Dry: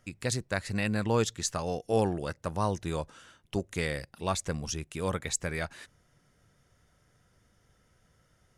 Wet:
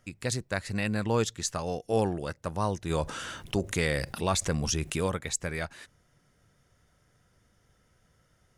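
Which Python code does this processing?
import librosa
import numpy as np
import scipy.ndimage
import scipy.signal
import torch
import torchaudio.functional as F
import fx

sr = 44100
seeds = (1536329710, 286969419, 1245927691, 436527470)

y = fx.env_flatten(x, sr, amount_pct=50, at=(2.89, 5.06), fade=0.02)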